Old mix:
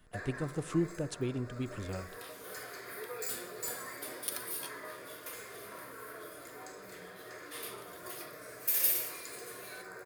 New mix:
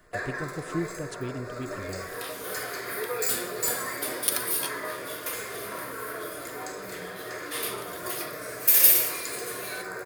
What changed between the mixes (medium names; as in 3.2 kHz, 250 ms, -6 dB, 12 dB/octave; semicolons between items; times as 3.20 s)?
first sound +11.0 dB; second sound +11.5 dB